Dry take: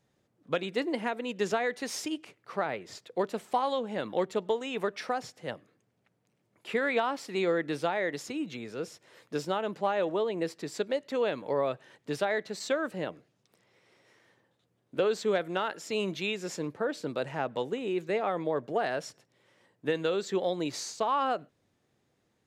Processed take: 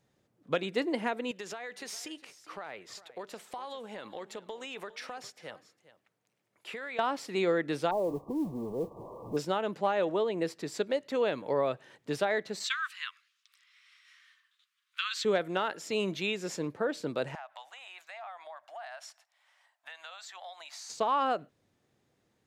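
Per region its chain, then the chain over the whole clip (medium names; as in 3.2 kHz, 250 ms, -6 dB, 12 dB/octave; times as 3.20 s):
1.31–6.99 s: bass shelf 450 Hz -11.5 dB + compression 5:1, threshold -37 dBFS + delay 407 ms -17 dB
7.91–9.37 s: jump at every zero crossing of -36 dBFS + brick-wall FIR low-pass 1.2 kHz + modulation noise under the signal 31 dB
12.64–15.25 s: steep high-pass 1.1 kHz 72 dB/octave + peaking EQ 3.2 kHz +8.5 dB 1.6 oct
17.35–20.90 s: elliptic high-pass 680 Hz + compression 3:1, threshold -44 dBFS
whole clip: none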